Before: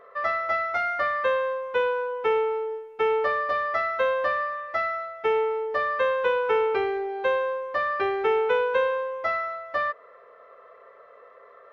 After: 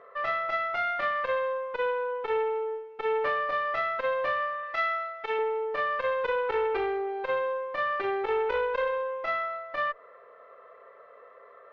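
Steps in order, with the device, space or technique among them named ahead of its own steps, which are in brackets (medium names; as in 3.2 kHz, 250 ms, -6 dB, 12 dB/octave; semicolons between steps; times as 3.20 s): valve radio (band-pass 86–4100 Hz; valve stage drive 16 dB, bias 0.4; transformer saturation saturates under 730 Hz); 4.63–5.39 s: tilt shelf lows -5 dB, about 910 Hz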